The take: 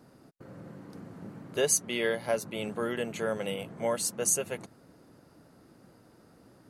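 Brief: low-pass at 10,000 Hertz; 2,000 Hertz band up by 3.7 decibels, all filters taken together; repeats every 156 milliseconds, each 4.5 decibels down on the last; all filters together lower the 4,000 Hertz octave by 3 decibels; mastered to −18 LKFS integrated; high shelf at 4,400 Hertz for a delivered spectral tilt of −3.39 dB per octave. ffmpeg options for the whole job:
ffmpeg -i in.wav -af "lowpass=10000,equalizer=frequency=2000:width_type=o:gain=7,equalizer=frequency=4000:width_type=o:gain=-4,highshelf=frequency=4400:gain=-8,aecho=1:1:156|312|468|624|780|936|1092|1248|1404:0.596|0.357|0.214|0.129|0.0772|0.0463|0.0278|0.0167|0.01,volume=12dB" out.wav

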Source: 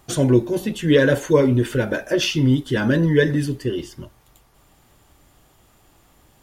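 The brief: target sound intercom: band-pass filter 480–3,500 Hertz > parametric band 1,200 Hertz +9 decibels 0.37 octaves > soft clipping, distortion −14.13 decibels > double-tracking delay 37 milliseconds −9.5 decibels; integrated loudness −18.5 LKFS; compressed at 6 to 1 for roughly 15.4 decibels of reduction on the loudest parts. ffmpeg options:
ffmpeg -i in.wav -filter_complex "[0:a]acompressor=threshold=-27dB:ratio=6,highpass=480,lowpass=3500,equalizer=frequency=1200:width_type=o:width=0.37:gain=9,asoftclip=threshold=-29dB,asplit=2[link_01][link_02];[link_02]adelay=37,volume=-9.5dB[link_03];[link_01][link_03]amix=inputs=2:normalize=0,volume=18.5dB" out.wav

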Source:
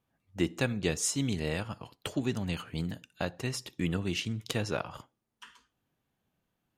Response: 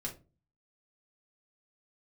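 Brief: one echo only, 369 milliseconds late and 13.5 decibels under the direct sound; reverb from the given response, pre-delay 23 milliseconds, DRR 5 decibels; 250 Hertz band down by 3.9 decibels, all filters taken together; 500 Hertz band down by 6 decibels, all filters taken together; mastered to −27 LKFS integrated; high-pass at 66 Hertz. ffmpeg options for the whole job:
-filter_complex "[0:a]highpass=66,equalizer=frequency=250:width_type=o:gain=-3.5,equalizer=frequency=500:width_type=o:gain=-6.5,aecho=1:1:369:0.211,asplit=2[link_01][link_02];[1:a]atrim=start_sample=2205,adelay=23[link_03];[link_02][link_03]afir=irnorm=-1:irlink=0,volume=-5dB[link_04];[link_01][link_04]amix=inputs=2:normalize=0,volume=6.5dB"

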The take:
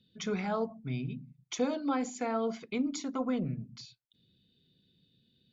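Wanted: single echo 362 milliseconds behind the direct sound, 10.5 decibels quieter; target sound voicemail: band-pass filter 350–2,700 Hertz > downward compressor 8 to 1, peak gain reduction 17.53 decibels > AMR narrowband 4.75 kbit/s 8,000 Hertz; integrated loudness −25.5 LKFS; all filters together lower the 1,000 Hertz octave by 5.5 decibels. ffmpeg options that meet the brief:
ffmpeg -i in.wav -af "highpass=350,lowpass=2700,equalizer=frequency=1000:width_type=o:gain=-7.5,aecho=1:1:362:0.299,acompressor=threshold=-47dB:ratio=8,volume=27dB" -ar 8000 -c:a libopencore_amrnb -b:a 4750 out.amr

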